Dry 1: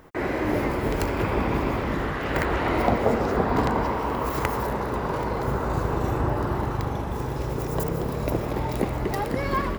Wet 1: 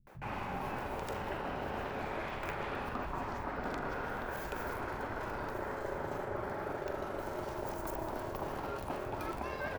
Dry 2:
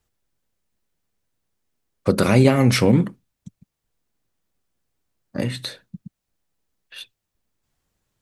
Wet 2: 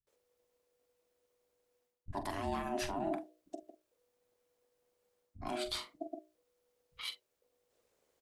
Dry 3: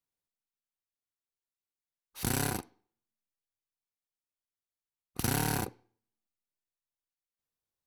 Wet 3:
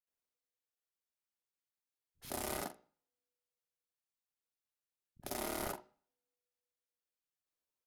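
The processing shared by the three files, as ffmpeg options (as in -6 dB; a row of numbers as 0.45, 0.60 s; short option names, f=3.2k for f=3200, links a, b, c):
-filter_complex "[0:a]bandreject=f=60:t=h:w=6,bandreject=f=120:t=h:w=6,bandreject=f=180:t=h:w=6,areverse,acompressor=threshold=-33dB:ratio=6,areverse,aeval=exprs='val(0)*sin(2*PI*490*n/s)':c=same,asplit=2[a][b];[b]adelay=44,volume=-11dB[c];[a][c]amix=inputs=2:normalize=0,acrossover=split=160[d][e];[e]adelay=70[f];[d][f]amix=inputs=2:normalize=0"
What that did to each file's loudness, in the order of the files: -13.0, -21.5, -9.0 LU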